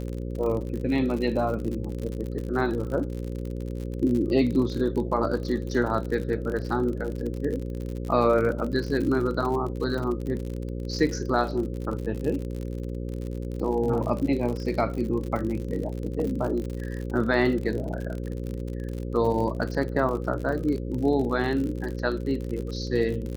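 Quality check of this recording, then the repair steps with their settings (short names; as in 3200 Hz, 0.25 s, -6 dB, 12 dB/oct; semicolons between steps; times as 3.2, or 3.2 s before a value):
buzz 60 Hz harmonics 9 -32 dBFS
crackle 55/s -31 dBFS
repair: de-click; de-hum 60 Hz, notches 9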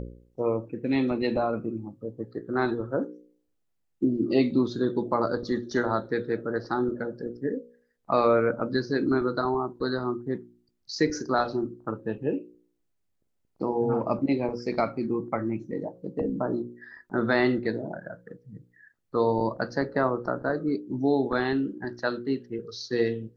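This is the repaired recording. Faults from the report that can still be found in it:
none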